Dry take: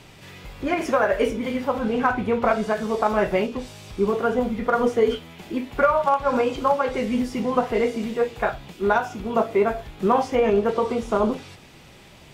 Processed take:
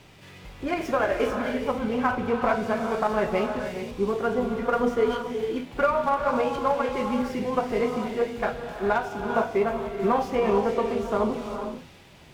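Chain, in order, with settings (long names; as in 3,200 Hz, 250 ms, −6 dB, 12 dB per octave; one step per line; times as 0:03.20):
reverb whose tail is shaped and stops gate 490 ms rising, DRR 5 dB
windowed peak hold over 3 samples
level −4 dB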